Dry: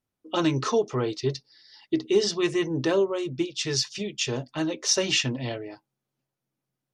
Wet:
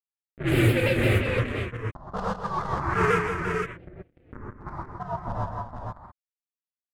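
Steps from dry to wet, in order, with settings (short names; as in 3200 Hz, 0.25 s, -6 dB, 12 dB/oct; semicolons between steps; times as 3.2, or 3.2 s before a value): inharmonic rescaling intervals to 127%; LPF 3000 Hz 24 dB/oct; low shelf 62 Hz +11 dB; de-hum 159.6 Hz, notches 3; transient shaper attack -5 dB, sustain 0 dB; bit-crush 4-bit; phaser stages 4, 0.34 Hz, lowest notch 380–1000 Hz; low-pass opened by the level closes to 480 Hz, open at -19.5 dBFS; tapped delay 0.162/0.229/0.386/0.465 s -8/-14/-16/-5.5 dB; non-linear reverb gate 0.15 s rising, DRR -6 dB; shaped vibrato saw down 5.8 Hz, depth 100 cents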